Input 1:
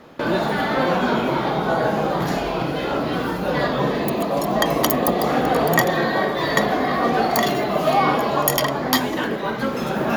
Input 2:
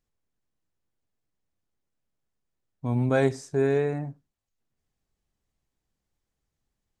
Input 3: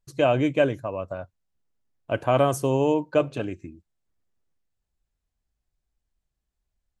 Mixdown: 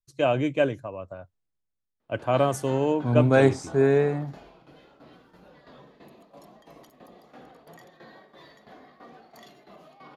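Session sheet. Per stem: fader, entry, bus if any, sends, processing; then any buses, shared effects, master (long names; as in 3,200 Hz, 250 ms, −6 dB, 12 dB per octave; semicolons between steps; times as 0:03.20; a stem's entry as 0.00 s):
−19.5 dB, 2.00 s, no send, brickwall limiter −12.5 dBFS, peak gain reduction 11 dB; shaped tremolo saw down 3 Hz, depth 70%
+1.0 dB, 0.20 s, no send, no processing
−4.0 dB, 0.00 s, no send, no processing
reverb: not used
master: Bessel low-pass filter 10,000 Hz, order 2; multiband upward and downward expander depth 40%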